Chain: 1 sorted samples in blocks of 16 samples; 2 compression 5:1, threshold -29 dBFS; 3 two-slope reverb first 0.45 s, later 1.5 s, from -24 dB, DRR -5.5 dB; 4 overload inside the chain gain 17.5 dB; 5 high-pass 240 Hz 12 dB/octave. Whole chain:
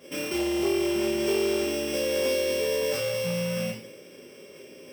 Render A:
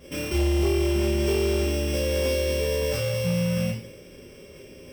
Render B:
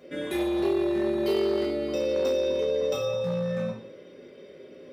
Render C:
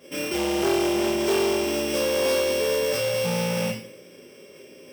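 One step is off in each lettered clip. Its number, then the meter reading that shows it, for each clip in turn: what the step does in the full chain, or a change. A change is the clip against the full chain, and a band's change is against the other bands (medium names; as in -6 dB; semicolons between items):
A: 5, crest factor change -5.0 dB; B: 1, distortion -8 dB; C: 2, mean gain reduction 3.5 dB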